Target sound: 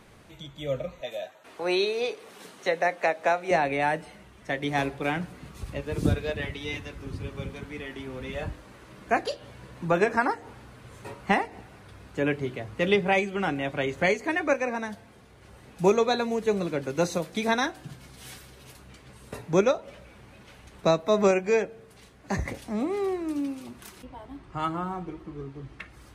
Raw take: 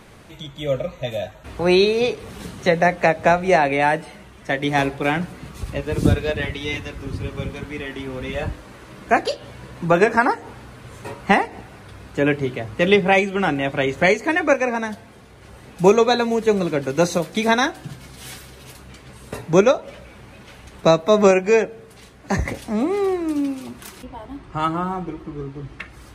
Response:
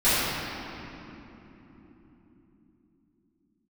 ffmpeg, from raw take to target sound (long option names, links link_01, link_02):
-filter_complex "[0:a]asettb=1/sr,asplit=3[link_01][link_02][link_03];[link_01]atrim=end=1.014[link_04];[link_02]atrim=start=1.01:end=3.51,asetpts=PTS-STARTPTS,afade=type=in:duration=0.004:curve=qsin,afade=type=out:start_time=2.496:duration=0.004:curve=qsin,highpass=370[link_05];[link_03]atrim=start=3.506[link_06];[link_04][link_05]acrossfade=duration=0.004:curve1=hsin:curve2=qsin[link_07];[link_07][link_06]acrossfade=duration=0.004:curve1=qsin:curve2=hsin,volume=-7.5dB"